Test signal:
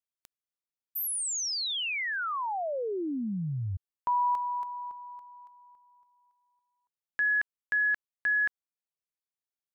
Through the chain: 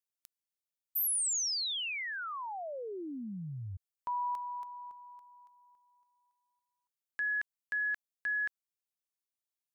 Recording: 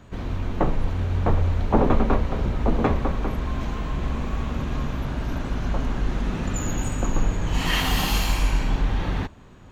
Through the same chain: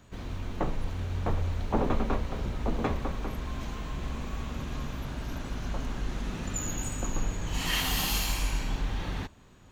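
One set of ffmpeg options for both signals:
ffmpeg -i in.wav -af "highshelf=frequency=3400:gain=10,volume=-8.5dB" out.wav

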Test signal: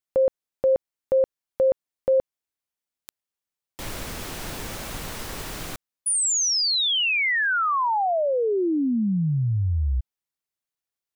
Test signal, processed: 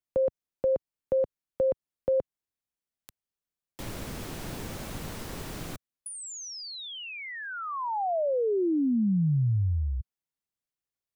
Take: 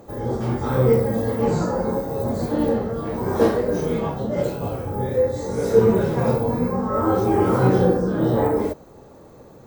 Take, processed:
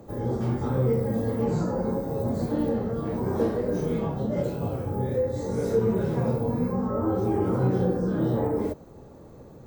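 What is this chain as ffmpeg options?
ffmpeg -i in.wav -filter_complex "[0:a]lowshelf=frequency=360:gain=8.5,acrossover=split=97|900[link_01][link_02][link_03];[link_01]acompressor=threshold=-41dB:ratio=2[link_04];[link_02]acompressor=threshold=-19dB:ratio=2[link_05];[link_03]acompressor=threshold=-34dB:ratio=6[link_06];[link_04][link_05][link_06]amix=inputs=3:normalize=0,volume=-6dB" out.wav

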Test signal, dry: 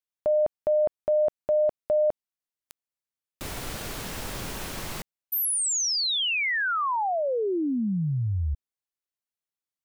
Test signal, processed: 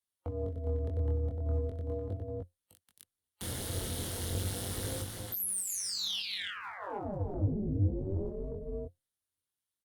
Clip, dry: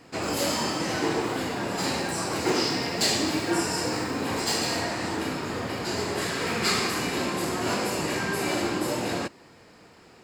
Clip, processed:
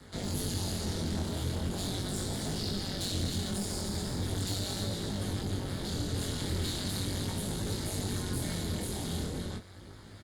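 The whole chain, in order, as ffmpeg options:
ffmpeg -i in.wav -filter_complex "[0:a]afreqshift=-330,superequalizer=9b=0.355:12b=0.398:13b=1.58:16b=2.51,aecho=1:1:41|178|267|299:0.15|0.224|0.112|0.355,asplit=2[link_01][link_02];[link_02]acompressor=threshold=-31dB:ratio=16:attack=0.31:release=120:knee=6:detection=peak,volume=0dB[link_03];[link_01][link_03]amix=inputs=2:normalize=0,aphaser=in_gain=1:out_gain=1:delay=2.6:decay=0.35:speed=1.8:type=triangular,acrossover=split=130|710|2500[link_04][link_05][link_06][link_07];[link_04]acompressor=threshold=-26dB:ratio=3[link_08];[link_05]acompressor=threshold=-29dB:ratio=10[link_09];[link_06]acompressor=threshold=-42dB:ratio=10[link_10];[link_07]acompressor=threshold=-27dB:ratio=2[link_11];[link_08][link_09][link_10][link_11]amix=inputs=4:normalize=0,tremolo=f=190:d=0.857,aeval=exprs='(tanh(15.8*val(0)+0.05)-tanh(0.05))/15.8':channel_layout=same,aeval=exprs='val(0)*sin(2*PI*200*n/s)':channel_layout=same,flanger=delay=19:depth=5.7:speed=0.39,equalizer=frequency=89:width_type=o:width=0.54:gain=13,volume=2dB" -ar 48000 -c:a libopus -b:a 64k out.opus

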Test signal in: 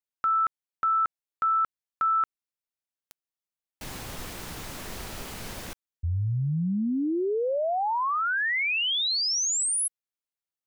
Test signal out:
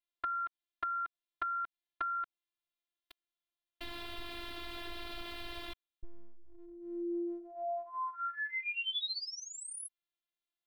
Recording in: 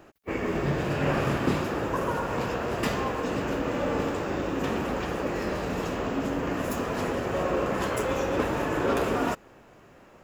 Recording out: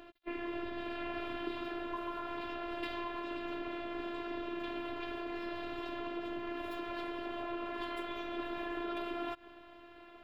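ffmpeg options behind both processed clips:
ffmpeg -i in.wav -af "highshelf=frequency=4900:width_type=q:width=3:gain=-10.5,acompressor=threshold=-41dB:ratio=2.5:attack=17:release=171:detection=peak,afftfilt=real='hypot(re,im)*cos(PI*b)':imag='0':win_size=512:overlap=0.75,volume=1.5dB" out.wav

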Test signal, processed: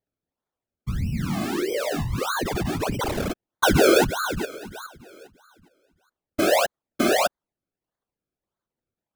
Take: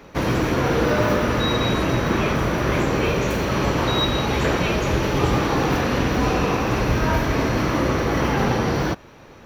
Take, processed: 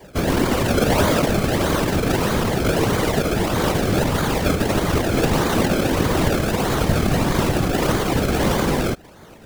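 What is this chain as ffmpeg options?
ffmpeg -i in.wav -af "acrusher=samples=32:mix=1:aa=0.000001:lfo=1:lforange=32:lforate=1.6,afftfilt=real='hypot(re,im)*cos(2*PI*random(0))':imag='hypot(re,im)*sin(2*PI*random(1))':win_size=512:overlap=0.75,volume=7.5dB" out.wav

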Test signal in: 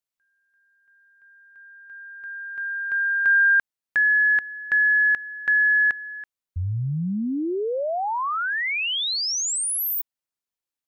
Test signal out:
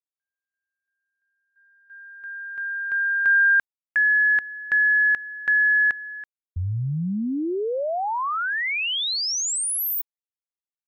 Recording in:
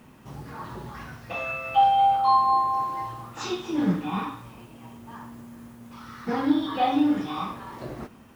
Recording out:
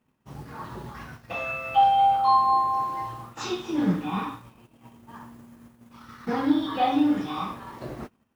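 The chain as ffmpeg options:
ffmpeg -i in.wav -af "agate=range=-23dB:threshold=-40dB:ratio=3:release=65:detection=peak" out.wav

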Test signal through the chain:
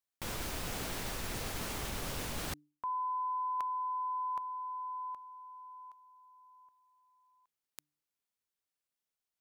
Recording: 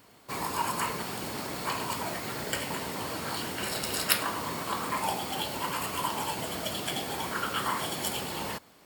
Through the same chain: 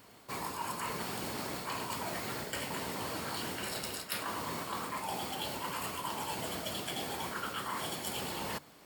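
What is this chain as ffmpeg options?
ffmpeg -i in.wav -af "bandreject=frequency=148.5:width_type=h:width=4,bandreject=frequency=297:width_type=h:width=4,areverse,acompressor=threshold=-34dB:ratio=12,areverse" out.wav

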